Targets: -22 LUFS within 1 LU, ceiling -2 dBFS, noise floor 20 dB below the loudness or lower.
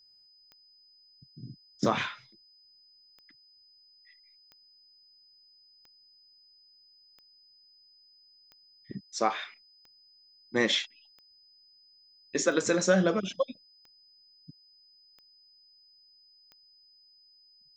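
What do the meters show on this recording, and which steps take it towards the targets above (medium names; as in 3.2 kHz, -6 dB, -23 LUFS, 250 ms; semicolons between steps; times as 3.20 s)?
clicks found 13; steady tone 5 kHz; tone level -58 dBFS; loudness -29.0 LUFS; peak level -12.0 dBFS; loudness target -22.0 LUFS
-> de-click; band-stop 5 kHz, Q 30; trim +7 dB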